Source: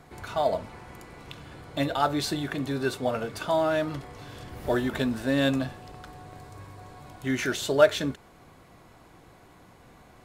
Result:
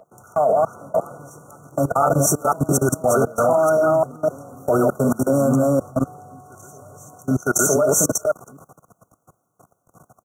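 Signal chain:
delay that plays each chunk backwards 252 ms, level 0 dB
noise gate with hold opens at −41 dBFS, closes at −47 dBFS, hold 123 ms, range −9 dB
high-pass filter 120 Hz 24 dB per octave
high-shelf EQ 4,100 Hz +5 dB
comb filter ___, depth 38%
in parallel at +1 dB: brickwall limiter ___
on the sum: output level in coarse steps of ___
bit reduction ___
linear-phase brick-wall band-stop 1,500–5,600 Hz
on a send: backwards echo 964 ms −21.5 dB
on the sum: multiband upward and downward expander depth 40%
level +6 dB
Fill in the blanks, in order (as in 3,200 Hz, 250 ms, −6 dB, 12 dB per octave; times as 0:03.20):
1.6 ms, −10.5 dBFS, 22 dB, 12 bits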